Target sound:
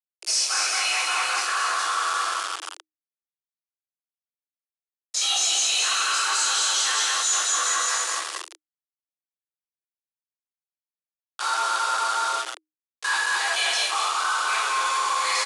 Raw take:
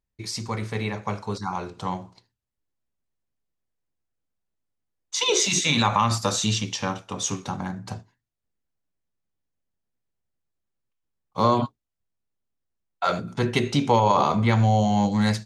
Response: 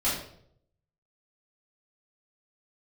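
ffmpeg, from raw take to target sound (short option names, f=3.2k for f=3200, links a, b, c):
-filter_complex "[0:a]highpass=860,aecho=1:1:220|407|566|701.1|815.9:0.631|0.398|0.251|0.158|0.1[a];[1:a]atrim=start_sample=2205,asetrate=26460,aresample=44100[b];[a][b]afir=irnorm=-1:irlink=0,areverse,acompressor=threshold=-19dB:ratio=16,areverse,aeval=exprs='val(0)*gte(abs(val(0)),0.0422)':c=same,highshelf=f=3.5k:g=8.5,asoftclip=type=tanh:threshold=-18dB,aresample=22050,aresample=44100,afreqshift=310"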